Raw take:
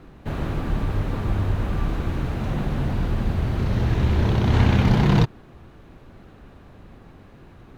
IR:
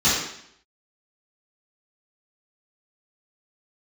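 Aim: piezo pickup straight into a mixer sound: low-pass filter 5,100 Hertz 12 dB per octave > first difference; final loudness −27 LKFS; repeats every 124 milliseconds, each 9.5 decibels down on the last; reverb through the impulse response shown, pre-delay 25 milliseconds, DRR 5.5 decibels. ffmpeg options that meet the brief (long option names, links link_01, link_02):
-filter_complex "[0:a]aecho=1:1:124|248|372|496:0.335|0.111|0.0365|0.012,asplit=2[link_01][link_02];[1:a]atrim=start_sample=2205,adelay=25[link_03];[link_02][link_03]afir=irnorm=-1:irlink=0,volume=-24dB[link_04];[link_01][link_04]amix=inputs=2:normalize=0,lowpass=5100,aderivative,volume=17dB"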